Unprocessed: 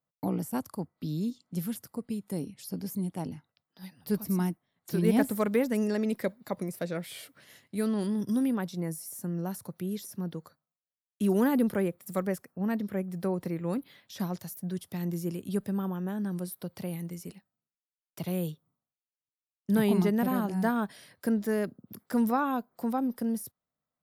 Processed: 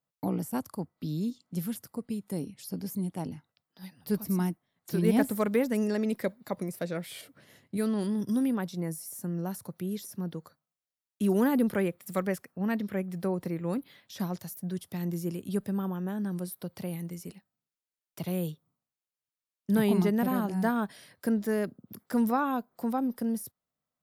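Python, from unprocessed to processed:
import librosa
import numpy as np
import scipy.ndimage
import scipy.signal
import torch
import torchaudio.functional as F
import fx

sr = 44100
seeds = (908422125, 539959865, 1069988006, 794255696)

y = fx.tilt_shelf(x, sr, db=5.0, hz=860.0, at=(7.21, 7.77))
y = fx.peak_eq(y, sr, hz=2600.0, db=5.0, octaves=1.8, at=(11.71, 13.22))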